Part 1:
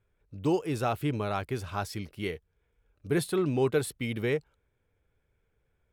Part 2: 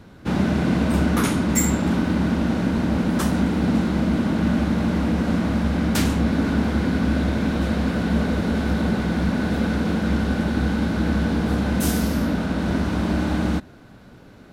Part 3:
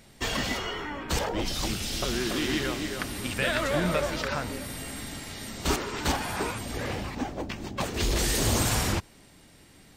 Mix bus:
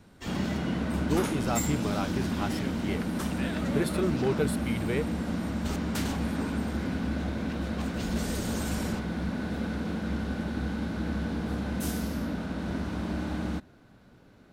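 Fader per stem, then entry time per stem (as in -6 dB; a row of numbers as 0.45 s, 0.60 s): -2.0 dB, -10.0 dB, -12.0 dB; 0.65 s, 0.00 s, 0.00 s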